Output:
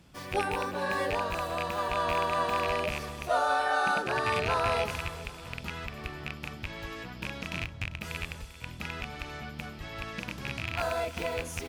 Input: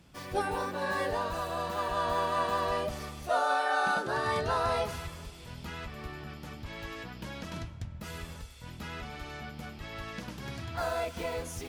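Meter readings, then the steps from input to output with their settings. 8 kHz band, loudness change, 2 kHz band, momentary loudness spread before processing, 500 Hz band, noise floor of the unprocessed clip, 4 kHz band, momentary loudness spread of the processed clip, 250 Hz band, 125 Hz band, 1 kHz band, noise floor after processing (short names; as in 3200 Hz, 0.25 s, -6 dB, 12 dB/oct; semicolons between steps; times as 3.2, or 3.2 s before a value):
+1.5 dB, +1.5 dB, +3.0 dB, 14 LU, +1.0 dB, -47 dBFS, +3.0 dB, 12 LU, +1.0 dB, +1.5 dB, +1.0 dB, -44 dBFS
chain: rattling part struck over -37 dBFS, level -21 dBFS; feedback echo 0.394 s, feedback 49%, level -16.5 dB; gain +1 dB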